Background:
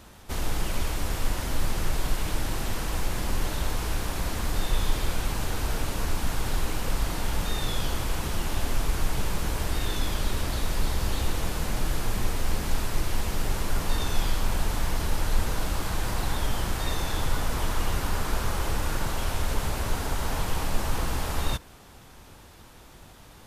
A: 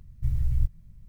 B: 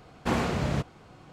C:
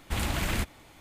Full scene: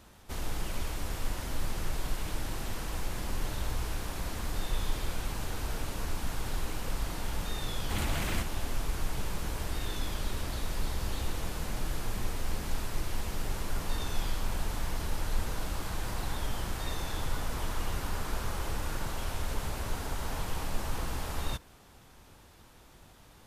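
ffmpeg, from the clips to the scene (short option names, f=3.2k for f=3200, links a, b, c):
-filter_complex "[0:a]volume=-6.5dB[a];[1:a]atrim=end=1.08,asetpts=PTS-STARTPTS,volume=-15dB,afade=t=in:d=0.004:c=hsin,afade=t=out:st=1.076:d=0.004:c=hsin,adelay=3190[b];[3:a]atrim=end=1,asetpts=PTS-STARTPTS,volume=-4.5dB,afade=t=in:d=0.004:c=hsin,afade=t=out:st=0.996:d=0.004:c=hsin,adelay=7790[c];[a][b][c]amix=inputs=3:normalize=0"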